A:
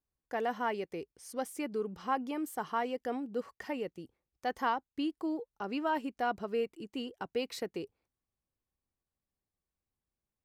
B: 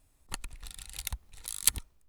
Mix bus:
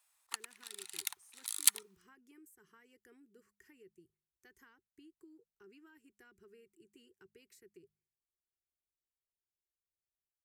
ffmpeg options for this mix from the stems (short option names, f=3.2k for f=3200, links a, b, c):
-filter_complex "[0:a]firequalizer=gain_entry='entry(130,0);entry(250,-12);entry(380,3);entry(570,-27);entry(1600,1);entry(3800,-8);entry(7200,9)':delay=0.05:min_phase=1,acrossover=split=180[a][b];[b]acompressor=threshold=-44dB:ratio=10[c];[a][c]amix=inputs=2:normalize=0,volume=-16dB[d];[1:a]highpass=f=910:w=0.5412,highpass=f=910:w=1.3066,volume=-1.5dB[e];[d][e]amix=inputs=2:normalize=0,equalizer=f=380:t=o:w=0.41:g=5,bandreject=f=51.53:t=h:w=4,bandreject=f=103.06:t=h:w=4,bandreject=f=154.59:t=h:w=4,bandreject=f=206.12:t=h:w=4"